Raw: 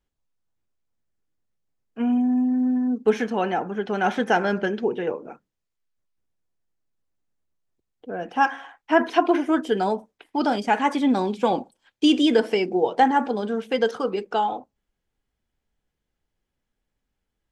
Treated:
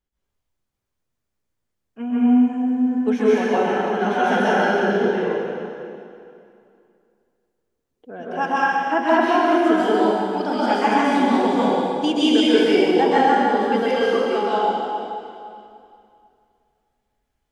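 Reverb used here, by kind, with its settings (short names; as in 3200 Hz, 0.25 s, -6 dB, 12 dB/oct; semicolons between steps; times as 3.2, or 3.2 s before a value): plate-style reverb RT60 2.5 s, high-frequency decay 0.9×, pre-delay 0.115 s, DRR -9.5 dB; gain -5 dB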